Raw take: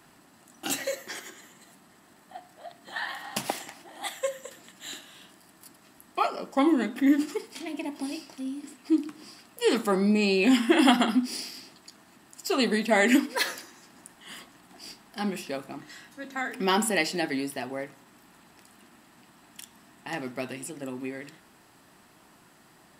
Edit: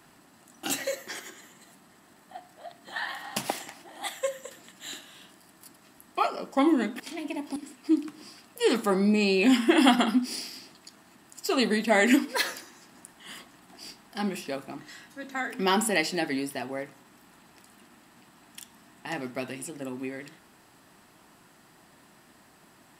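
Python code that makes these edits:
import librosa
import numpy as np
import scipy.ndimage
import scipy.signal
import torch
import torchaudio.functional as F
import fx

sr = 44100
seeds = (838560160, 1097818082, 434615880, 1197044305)

y = fx.edit(x, sr, fx.cut(start_s=7.0, length_s=0.49),
    fx.cut(start_s=8.05, length_s=0.52), tone=tone)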